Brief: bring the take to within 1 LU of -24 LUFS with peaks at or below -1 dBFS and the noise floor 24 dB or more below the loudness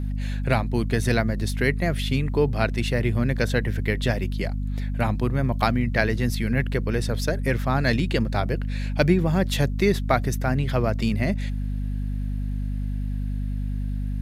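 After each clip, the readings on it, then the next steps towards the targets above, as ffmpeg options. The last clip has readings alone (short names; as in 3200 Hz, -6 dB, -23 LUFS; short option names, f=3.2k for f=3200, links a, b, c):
hum 50 Hz; harmonics up to 250 Hz; hum level -24 dBFS; loudness -24.5 LUFS; peak -4.0 dBFS; loudness target -24.0 LUFS
-> -af "bandreject=f=50:t=h:w=6,bandreject=f=100:t=h:w=6,bandreject=f=150:t=h:w=6,bandreject=f=200:t=h:w=6,bandreject=f=250:t=h:w=6"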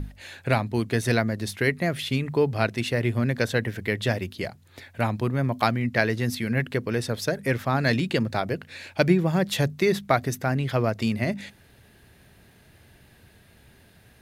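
hum none; loudness -25.5 LUFS; peak -4.5 dBFS; loudness target -24.0 LUFS
-> -af "volume=1.5dB"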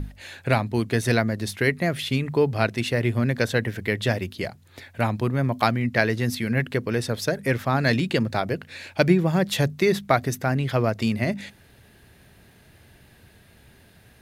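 loudness -24.0 LUFS; peak -3.0 dBFS; noise floor -54 dBFS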